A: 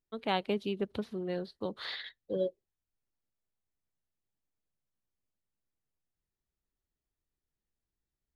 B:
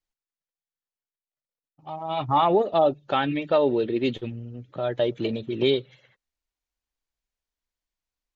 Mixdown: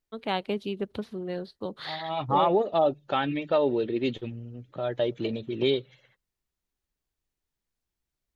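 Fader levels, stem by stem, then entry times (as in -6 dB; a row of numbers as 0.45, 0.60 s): +2.0, -3.0 dB; 0.00, 0.00 s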